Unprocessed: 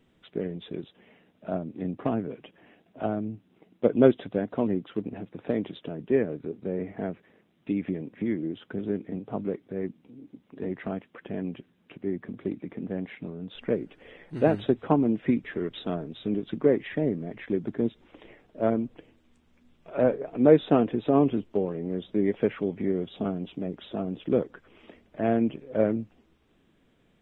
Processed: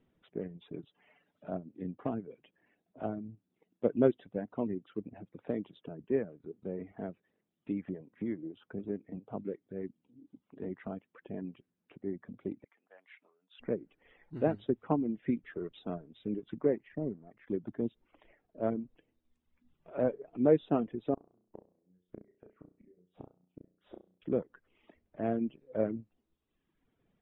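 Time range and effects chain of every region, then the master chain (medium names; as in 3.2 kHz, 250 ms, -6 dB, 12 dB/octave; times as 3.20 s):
0.61–1.50 s: comb 6.9 ms, depth 46% + tape noise reduction on one side only encoder only
12.64–13.60 s: high-pass 1.2 kHz + three bands expanded up and down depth 40%
16.77–17.47 s: companding laws mixed up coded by A + distance through air 380 m
21.14–24.22 s: low-pass 2.1 kHz + inverted gate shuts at -26 dBFS, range -29 dB + flutter echo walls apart 5.7 m, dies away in 0.56 s
whole clip: low-pass 1.6 kHz 6 dB/octave; reverb removal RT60 1.2 s; trim -6.5 dB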